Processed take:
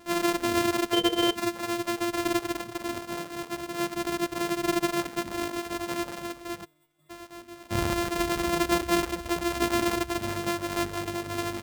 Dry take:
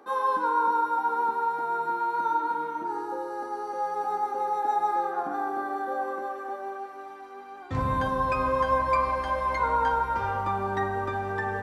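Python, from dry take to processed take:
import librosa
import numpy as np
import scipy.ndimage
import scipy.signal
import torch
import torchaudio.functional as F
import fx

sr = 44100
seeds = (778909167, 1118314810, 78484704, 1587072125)

y = np.r_[np.sort(x[:len(x) // 128 * 128].reshape(-1, 128), axis=1).ravel(), x[len(x) // 128 * 128:]]
y = fx.small_body(y, sr, hz=(470.0, 3100.0), ring_ms=45, db=16, at=(0.93, 1.35))
y = fx.stiff_resonator(y, sr, f0_hz=150.0, decay_s=0.46, stiffness=0.002, at=(6.64, 7.09), fade=0.02)
y = fx.dereverb_blind(y, sr, rt60_s=0.81)
y = F.gain(torch.from_numpy(y), 1.0).numpy()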